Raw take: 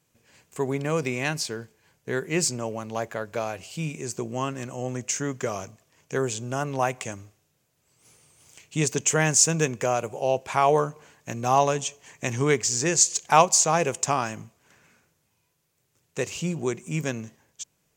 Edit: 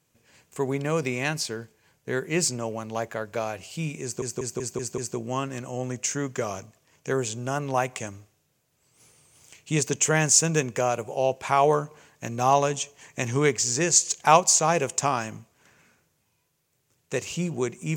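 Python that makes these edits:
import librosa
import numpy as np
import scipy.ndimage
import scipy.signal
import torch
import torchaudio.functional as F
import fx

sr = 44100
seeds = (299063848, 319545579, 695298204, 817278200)

y = fx.edit(x, sr, fx.stutter(start_s=4.03, slice_s=0.19, count=6), tone=tone)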